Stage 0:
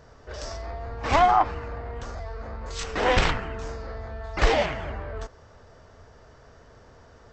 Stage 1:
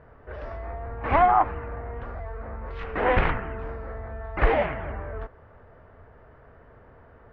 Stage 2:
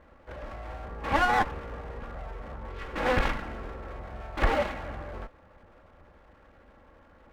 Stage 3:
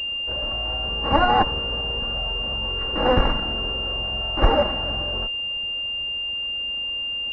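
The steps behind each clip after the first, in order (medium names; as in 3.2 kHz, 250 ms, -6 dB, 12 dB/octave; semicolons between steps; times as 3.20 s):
low-pass 2.3 kHz 24 dB/octave
comb filter that takes the minimum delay 3.6 ms; trim -2.5 dB
class-D stage that switches slowly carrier 2.8 kHz; trim +8 dB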